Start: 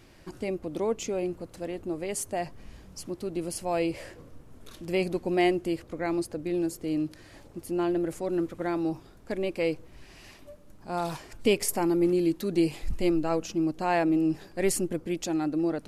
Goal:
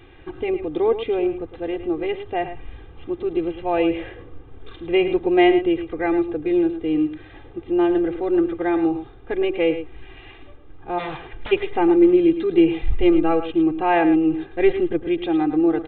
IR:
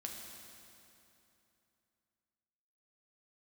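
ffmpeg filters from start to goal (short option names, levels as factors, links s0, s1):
-filter_complex "[0:a]aecho=1:1:2.5:0.87,asplit=3[s0][s1][s2];[s0]afade=t=out:st=10.98:d=0.02[s3];[s1]aeval=exprs='0.0316*(abs(mod(val(0)/0.0316+3,4)-2)-1)':c=same,afade=t=in:st=10.98:d=0.02,afade=t=out:st=11.51:d=0.02[s4];[s2]afade=t=in:st=11.51:d=0.02[s5];[s3][s4][s5]amix=inputs=3:normalize=0,asplit=2[s6][s7];[s7]aecho=0:1:108:0.282[s8];[s6][s8]amix=inputs=2:normalize=0,aresample=8000,aresample=44100,volume=1.78"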